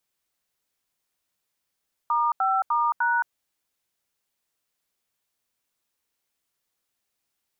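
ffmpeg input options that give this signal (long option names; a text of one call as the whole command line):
ffmpeg -f lavfi -i "aevalsrc='0.075*clip(min(mod(t,0.301),0.22-mod(t,0.301))/0.002,0,1)*(eq(floor(t/0.301),0)*(sin(2*PI*941*mod(t,0.301))+sin(2*PI*1209*mod(t,0.301)))+eq(floor(t/0.301),1)*(sin(2*PI*770*mod(t,0.301))+sin(2*PI*1336*mod(t,0.301)))+eq(floor(t/0.301),2)*(sin(2*PI*941*mod(t,0.301))+sin(2*PI*1209*mod(t,0.301)))+eq(floor(t/0.301),3)*(sin(2*PI*941*mod(t,0.301))+sin(2*PI*1477*mod(t,0.301))))':duration=1.204:sample_rate=44100" out.wav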